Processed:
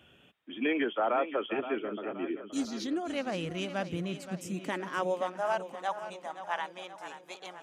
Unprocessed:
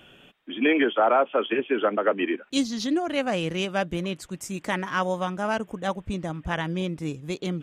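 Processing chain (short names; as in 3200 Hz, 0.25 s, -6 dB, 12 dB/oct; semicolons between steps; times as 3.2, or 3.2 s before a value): high-pass sweep 68 Hz -> 820 Hz, 3.55–5.64; spectral gain 1.79–2.59, 440–5000 Hz -10 dB; warbling echo 0.523 s, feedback 54%, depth 55 cents, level -11.5 dB; gain -8.5 dB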